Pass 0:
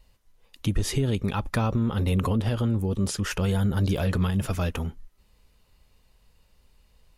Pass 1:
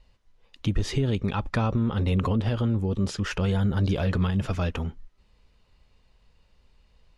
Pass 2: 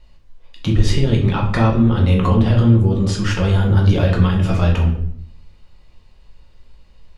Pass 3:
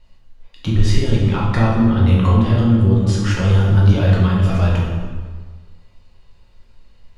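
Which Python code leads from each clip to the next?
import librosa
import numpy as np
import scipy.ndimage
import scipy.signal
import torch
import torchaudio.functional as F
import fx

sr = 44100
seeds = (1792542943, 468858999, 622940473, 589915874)

y1 = scipy.signal.sosfilt(scipy.signal.butter(2, 5200.0, 'lowpass', fs=sr, output='sos'), x)
y2 = fx.room_shoebox(y1, sr, seeds[0], volume_m3=100.0, walls='mixed', distance_m=0.94)
y2 = F.gain(torch.from_numpy(y2), 5.0).numpy()
y3 = fx.rev_plate(y2, sr, seeds[1], rt60_s=1.5, hf_ratio=0.8, predelay_ms=0, drr_db=1.0)
y3 = F.gain(torch.from_numpy(y3), -3.0).numpy()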